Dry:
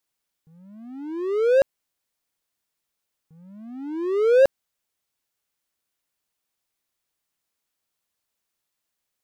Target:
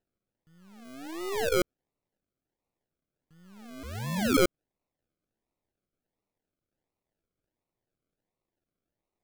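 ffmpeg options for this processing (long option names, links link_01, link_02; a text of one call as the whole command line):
ffmpeg -i in.wav -filter_complex "[0:a]aeval=exprs='if(lt(val(0),0),0.447*val(0),val(0))':channel_layout=same,acrusher=samples=38:mix=1:aa=0.000001:lfo=1:lforange=22.8:lforate=1.4,asettb=1/sr,asplit=3[link_01][link_02][link_03];[link_01]atrim=end=3.834[link_04];[link_02]atrim=start=3.83:end=4.37,asetpts=PTS-STARTPTS,afade=type=in:duration=0.004:curve=qsin,afade=type=out:start_time=0.536:duration=0.004:curve=qsin,afreqshift=-220[link_05];[link_03]atrim=start=4.366[link_06];[link_04][link_05]acrossfade=duration=0.004:curve1=hsin:curve2=qsin[link_07];[link_07][link_06]acrossfade=duration=0.004:curve1=qsin:curve2=hsin,volume=-5.5dB" out.wav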